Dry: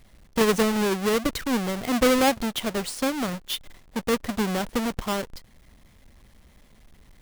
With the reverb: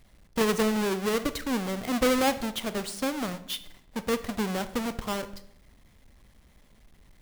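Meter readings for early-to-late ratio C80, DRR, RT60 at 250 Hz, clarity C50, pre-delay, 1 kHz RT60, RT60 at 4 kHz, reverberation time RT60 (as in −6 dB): 17.5 dB, 12.0 dB, 0.90 s, 14.0 dB, 23 ms, 0.70 s, 0.55 s, 0.75 s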